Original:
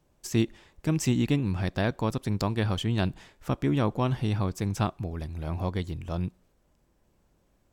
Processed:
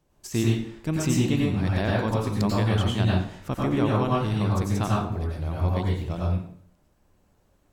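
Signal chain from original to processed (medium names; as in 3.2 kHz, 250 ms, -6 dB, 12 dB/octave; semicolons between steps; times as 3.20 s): plate-style reverb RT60 0.57 s, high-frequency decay 0.75×, pre-delay 80 ms, DRR -4 dB; trim -1.5 dB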